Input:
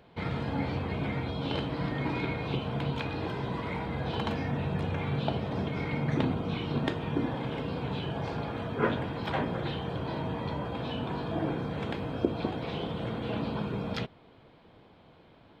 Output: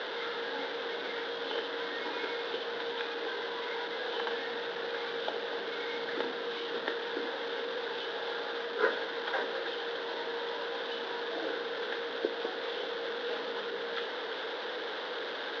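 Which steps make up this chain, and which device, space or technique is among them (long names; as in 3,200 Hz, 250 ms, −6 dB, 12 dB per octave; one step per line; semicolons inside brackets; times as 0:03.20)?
digital answering machine (band-pass filter 340–3,000 Hz; linear delta modulator 32 kbit/s, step −31 dBFS; loudspeaker in its box 460–4,000 Hz, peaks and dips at 470 Hz +8 dB, 690 Hz −7 dB, 1,100 Hz −4 dB, 1,600 Hz +7 dB, 2,400 Hz −8 dB, 3,600 Hz +8 dB)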